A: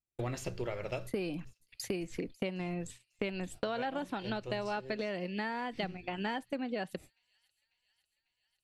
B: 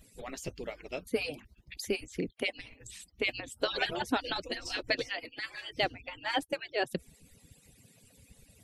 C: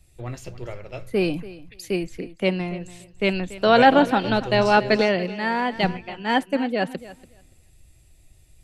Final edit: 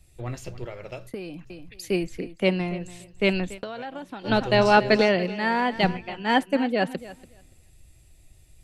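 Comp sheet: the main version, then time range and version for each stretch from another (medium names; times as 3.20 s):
C
0.65–1.50 s: from A
3.58–4.27 s: from A, crossfade 0.10 s
not used: B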